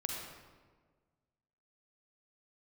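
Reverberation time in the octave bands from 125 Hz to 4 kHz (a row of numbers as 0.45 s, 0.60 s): 1.9 s, 1.7 s, 1.7 s, 1.4 s, 1.1 s, 0.90 s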